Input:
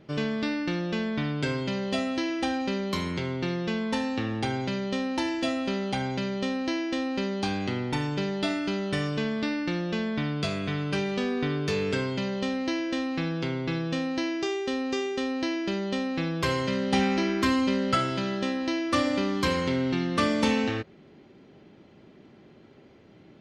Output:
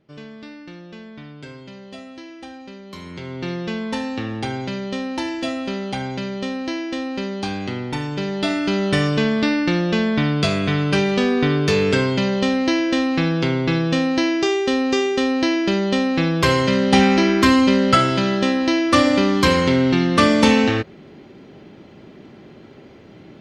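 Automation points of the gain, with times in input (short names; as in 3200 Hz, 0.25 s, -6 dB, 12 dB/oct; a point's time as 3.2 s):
2.84 s -9.5 dB
3.49 s +3 dB
8.08 s +3 dB
8.85 s +10 dB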